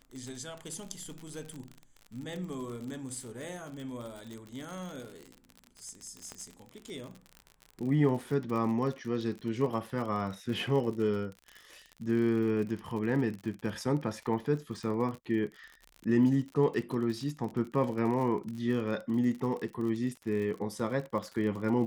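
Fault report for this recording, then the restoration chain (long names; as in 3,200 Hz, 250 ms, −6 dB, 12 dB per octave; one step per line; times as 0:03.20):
surface crackle 50 per second −37 dBFS
0:06.32: click −26 dBFS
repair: click removal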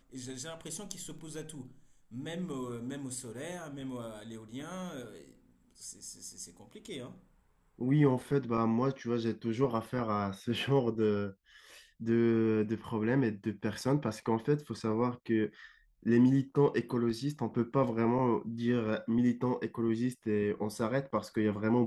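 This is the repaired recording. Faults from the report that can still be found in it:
0:06.32: click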